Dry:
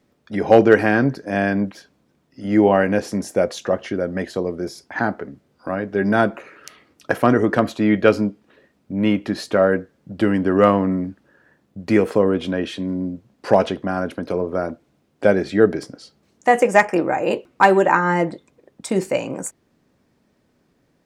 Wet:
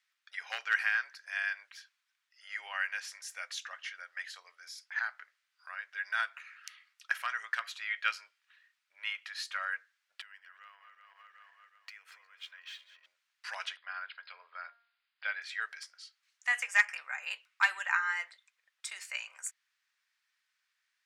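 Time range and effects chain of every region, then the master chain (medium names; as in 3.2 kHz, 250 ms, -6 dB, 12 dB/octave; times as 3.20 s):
10.21–13.06 s: backward echo that repeats 186 ms, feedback 59%, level -10.5 dB + compression 16:1, threshold -29 dBFS + decimation joined by straight lines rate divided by 2×
13.77–15.42 s: brick-wall FIR low-pass 5.1 kHz + de-hum 233.2 Hz, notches 9
whole clip: inverse Chebyshev high-pass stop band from 260 Hz, stop band 80 dB; treble shelf 7.6 kHz -8 dB; trim -4.5 dB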